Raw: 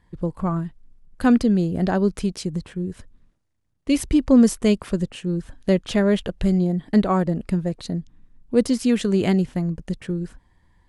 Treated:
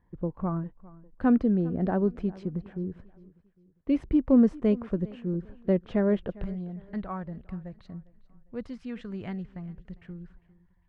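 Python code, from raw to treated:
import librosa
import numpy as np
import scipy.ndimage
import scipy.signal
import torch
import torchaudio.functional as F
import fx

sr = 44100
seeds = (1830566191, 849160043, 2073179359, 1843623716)

y = fx.peak_eq(x, sr, hz=360.0, db=fx.steps((0.0, 2.5), (6.44, -13.0)), octaves=2.4)
y = scipy.signal.sosfilt(scipy.signal.butter(2, 1600.0, 'lowpass', fs=sr, output='sos'), y)
y = fx.echo_feedback(y, sr, ms=402, feedback_pct=39, wet_db=-21.0)
y = F.gain(torch.from_numpy(y), -7.5).numpy()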